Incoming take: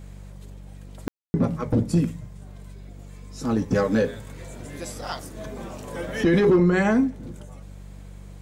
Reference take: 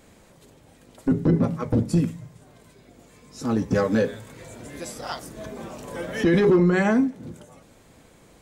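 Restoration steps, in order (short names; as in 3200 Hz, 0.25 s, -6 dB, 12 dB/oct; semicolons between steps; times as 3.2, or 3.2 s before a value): de-hum 48.2 Hz, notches 4; room tone fill 1.08–1.34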